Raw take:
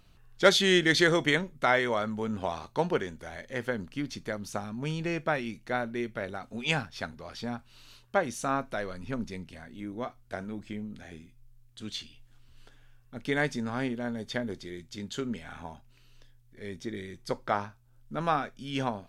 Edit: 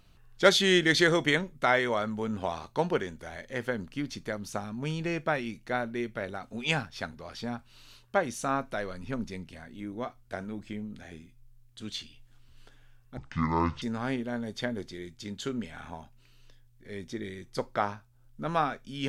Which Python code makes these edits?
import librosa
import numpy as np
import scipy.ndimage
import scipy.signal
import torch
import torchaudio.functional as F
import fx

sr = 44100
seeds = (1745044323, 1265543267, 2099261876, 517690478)

y = fx.edit(x, sr, fx.speed_span(start_s=13.17, length_s=0.37, speed=0.57), tone=tone)